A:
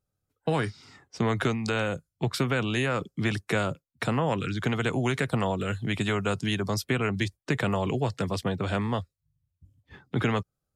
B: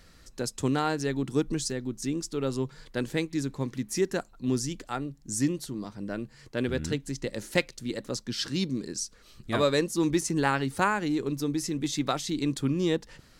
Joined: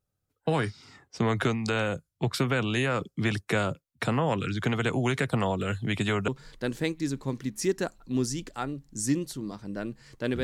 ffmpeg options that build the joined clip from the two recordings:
-filter_complex "[0:a]apad=whole_dur=10.43,atrim=end=10.43,atrim=end=6.282[a];[1:a]atrim=start=2.608:end=6.76[b];[a][b]acrossfade=d=0.004:c1=hsin:c2=hsin"

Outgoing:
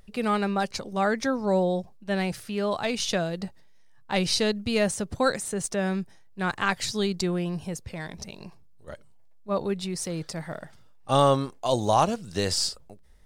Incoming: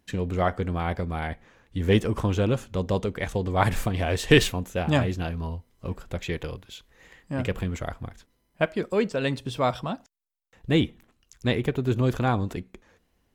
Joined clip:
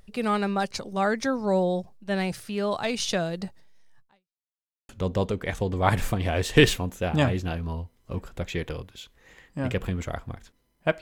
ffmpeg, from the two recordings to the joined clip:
-filter_complex "[0:a]apad=whole_dur=11.01,atrim=end=11.01,asplit=2[a][b];[a]atrim=end=4.4,asetpts=PTS-STARTPTS,afade=t=out:st=3.99:d=0.41:c=exp[c];[b]atrim=start=4.4:end=4.89,asetpts=PTS-STARTPTS,volume=0[d];[1:a]atrim=start=2.63:end=8.75,asetpts=PTS-STARTPTS,afade=t=in:d=0.004:c=hsin[e];[c][d][e]concat=n=3:v=0:a=1"

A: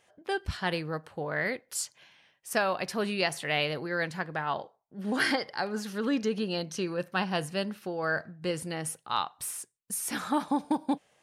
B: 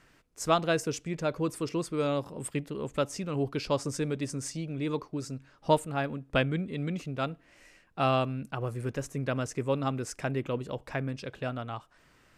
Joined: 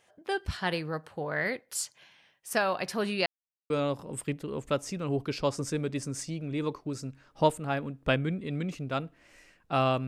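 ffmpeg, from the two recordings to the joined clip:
-filter_complex "[0:a]apad=whole_dur=10.07,atrim=end=10.07,asplit=2[a][b];[a]atrim=end=3.26,asetpts=PTS-STARTPTS,afade=t=out:st=3.256:d=0.004:c=hsin[c];[b]atrim=start=3.26:end=3.7,asetpts=PTS-STARTPTS,volume=0[d];[1:a]atrim=start=1.97:end=8.34,asetpts=PTS-STARTPTS,afade=t=in:d=0.004:c=hsin[e];[c][d][e]concat=n=3:v=0:a=1"

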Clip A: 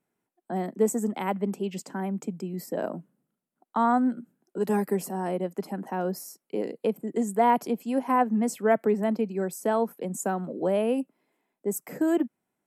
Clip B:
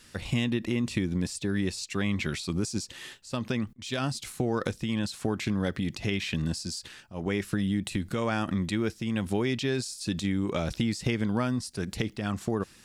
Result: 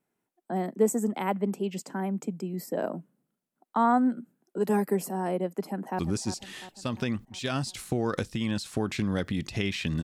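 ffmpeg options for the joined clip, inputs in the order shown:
-filter_complex "[0:a]apad=whole_dur=10.03,atrim=end=10.03,atrim=end=5.992[a];[1:a]atrim=start=2.468:end=6.51[b];[a][b]acrossfade=d=0.004:c1=hsin:c2=hsin,asplit=2[c][d];[d]afade=t=in:st=5.62:d=0.01,afade=t=out:st=5.99:d=0.01,aecho=0:1:350|700|1050|1400|1750|2100:0.281838|0.155011|0.0852561|0.0468908|0.02579|0.0141845[e];[c][e]amix=inputs=2:normalize=0"

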